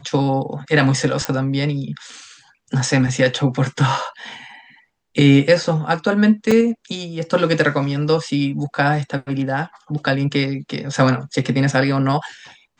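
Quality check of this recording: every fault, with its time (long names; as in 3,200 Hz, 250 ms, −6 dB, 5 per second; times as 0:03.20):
0:01.25: click −5 dBFS
0:06.51: drop-out 4.7 ms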